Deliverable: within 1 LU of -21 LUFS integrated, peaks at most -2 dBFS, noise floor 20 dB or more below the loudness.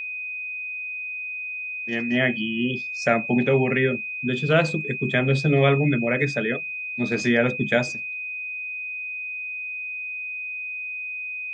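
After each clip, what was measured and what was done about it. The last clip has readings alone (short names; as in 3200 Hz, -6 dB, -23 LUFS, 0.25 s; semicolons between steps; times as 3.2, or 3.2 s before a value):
steady tone 2500 Hz; tone level -29 dBFS; loudness -24.0 LUFS; peak -5.0 dBFS; loudness target -21.0 LUFS
-> notch 2500 Hz, Q 30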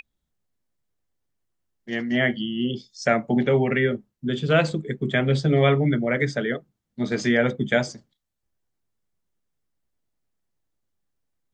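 steady tone none; loudness -23.0 LUFS; peak -5.5 dBFS; loudness target -21.0 LUFS
-> gain +2 dB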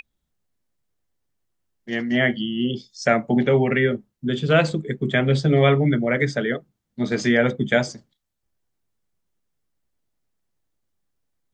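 loudness -21.0 LUFS; peak -3.5 dBFS; noise floor -78 dBFS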